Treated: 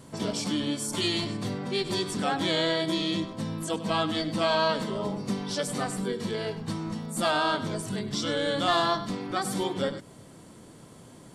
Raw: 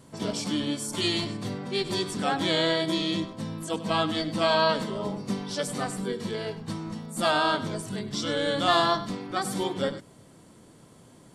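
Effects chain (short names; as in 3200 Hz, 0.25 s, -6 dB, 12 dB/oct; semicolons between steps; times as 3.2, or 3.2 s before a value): in parallel at +2 dB: compressor, threshold -34 dBFS, peak gain reduction 15 dB; on the sum: soft clip -8.5 dBFS, distortion -29 dB; gain -3.5 dB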